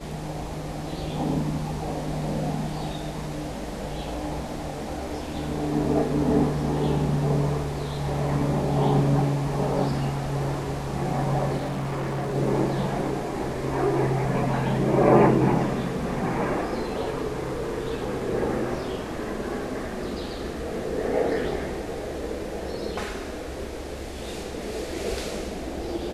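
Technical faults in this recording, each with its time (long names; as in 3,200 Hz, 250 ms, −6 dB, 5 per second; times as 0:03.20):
0:11.57–0:12.35: clipping −25.5 dBFS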